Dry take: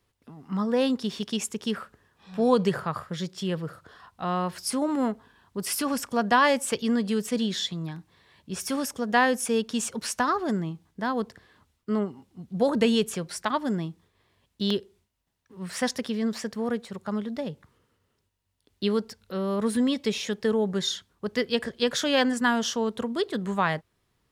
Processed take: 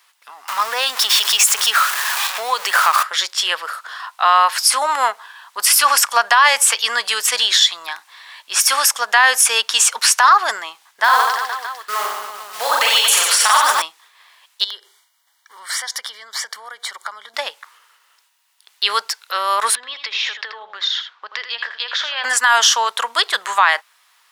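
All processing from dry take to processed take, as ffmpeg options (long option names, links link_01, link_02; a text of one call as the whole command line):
ffmpeg -i in.wav -filter_complex "[0:a]asettb=1/sr,asplit=3[link_01][link_02][link_03];[link_01]atrim=end=0.484[link_04];[link_02]atrim=start=0.48:end=3.03,asetpts=PTS-STARTPTS,afade=type=in:duration=0.004:curve=qsin,afade=type=out:start_time=2.546:duration=0.004:curve=qsin,aeval=exprs='val(0)+0.5*0.0188*sgn(val(0))':channel_layout=same,highshelf=frequency=8700:gain=4,acompressor=threshold=-25dB:ratio=5:attack=3.2:release=140:knee=1:detection=peak[link_05];[link_03]atrim=start=3.026[link_06];[link_04][link_05]acrossfade=duration=0.004:curve1=hsin:curve2=qsin[link_07];[link_07][link_06]acrossfade=duration=0.004:curve1=qsin:curve2=hsin,asettb=1/sr,asplit=3[link_08][link_09][link_10];[link_08]atrim=end=11.044[link_11];[link_09]atrim=start=11.04:end=13.82,asetpts=PTS-STARTPTS,afade=type=in:duration=0.004:curve=qsin,afade=type=out:start_time=2.776:duration=0.004:curve=qsin,acompressor=threshold=-25dB:ratio=4:attack=3.2:release=140:knee=1:detection=peak,acrusher=bits=6:mode=log:mix=0:aa=0.000001,aecho=1:1:40|90|152.5|230.6|328.3|450.4|602.9:0.794|0.631|0.501|0.398|0.316|0.251|0.2,atrim=end_sample=122598[link_12];[link_10]atrim=start=13.816[link_13];[link_11][link_12]acrossfade=duration=0.004:curve1=hsin:curve2=qsin[link_14];[link_14][link_13]acrossfade=duration=0.004:curve1=qsin:curve2=hsin,asettb=1/sr,asplit=3[link_15][link_16][link_17];[link_15]atrim=end=14.644[link_18];[link_16]atrim=start=14.64:end=17.34,asetpts=PTS-STARTPTS,afade=type=in:duration=0.004:curve=qsin,afade=type=out:start_time=2.696:duration=0.004:curve=qsin,acompressor=threshold=-39dB:ratio=12:attack=3.2:release=140:knee=1:detection=peak,asuperstop=centerf=2600:order=20:qfactor=5.2[link_19];[link_17]atrim=start=17.336[link_20];[link_18][link_19]acrossfade=duration=0.004:curve1=hsin:curve2=qsin[link_21];[link_21][link_20]acrossfade=duration=0.004:curve1=qsin:curve2=hsin,asettb=1/sr,asplit=3[link_22][link_23][link_24];[link_22]atrim=end=19.754[link_25];[link_23]atrim=start=19.75:end=22.24,asetpts=PTS-STARTPTS,afade=type=in:duration=0.004:curve=qsin,afade=type=out:start_time=2.486:duration=0.004:curve=qsin,lowpass=frequency=4300:width=0.5412,lowpass=frequency=4300:width=1.3066,acompressor=threshold=-37dB:ratio=8:attack=3.2:release=140:knee=1:detection=peak,aecho=1:1:81:0.355,atrim=end_sample=109809[link_26];[link_24]atrim=start=22.236[link_27];[link_25][link_26]acrossfade=duration=0.004:curve1=hsin:curve2=qsin[link_28];[link_28][link_27]acrossfade=duration=0.004:curve1=qsin:curve2=hsin,highpass=frequency=930:width=0.5412,highpass=frequency=930:width=1.3066,alimiter=level_in=22.5dB:limit=-1dB:release=50:level=0:latency=1,volume=-1.5dB" out.wav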